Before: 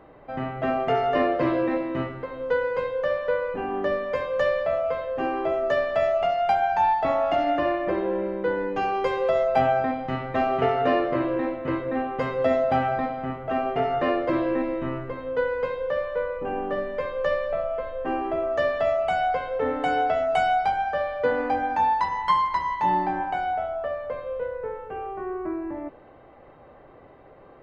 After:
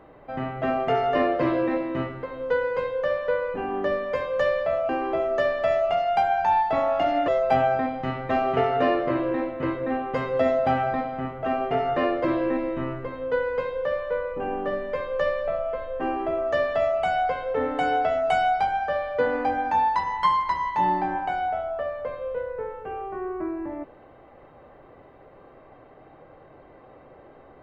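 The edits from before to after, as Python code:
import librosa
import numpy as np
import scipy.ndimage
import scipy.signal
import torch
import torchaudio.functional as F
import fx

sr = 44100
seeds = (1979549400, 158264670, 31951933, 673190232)

y = fx.edit(x, sr, fx.cut(start_s=4.89, length_s=0.32),
    fx.cut(start_s=7.6, length_s=1.73), tone=tone)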